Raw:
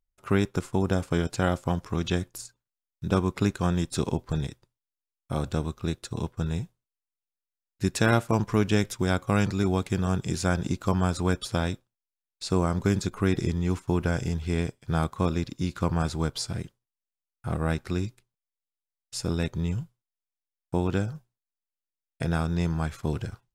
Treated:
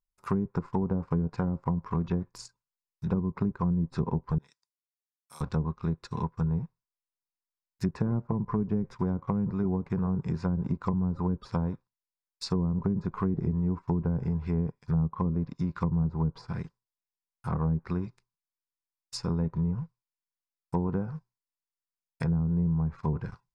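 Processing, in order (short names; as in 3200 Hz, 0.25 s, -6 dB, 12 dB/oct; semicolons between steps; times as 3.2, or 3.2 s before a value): thirty-one-band EQ 100 Hz -8 dB, 160 Hz +5 dB, 315 Hz -8 dB, 630 Hz -8 dB, 1000 Hz +11 dB, 3150 Hz -11 dB, 5000 Hz +6 dB; sample leveller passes 1; 4.38–5.41 differentiator; treble ducked by the level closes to 320 Hz, closed at -17 dBFS; gain -5 dB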